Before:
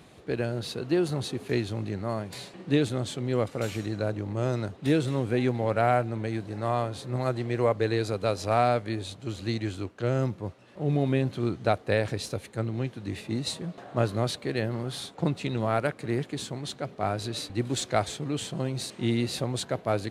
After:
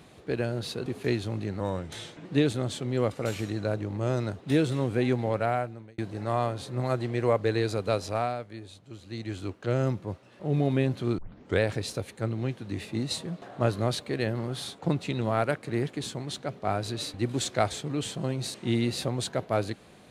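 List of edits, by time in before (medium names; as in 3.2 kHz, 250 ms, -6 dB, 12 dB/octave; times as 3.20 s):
0.86–1.31 s: delete
2.05–2.61 s: speed 86%
5.59–6.34 s: fade out
8.31–9.86 s: dip -10.5 dB, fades 0.41 s
11.54 s: tape start 0.42 s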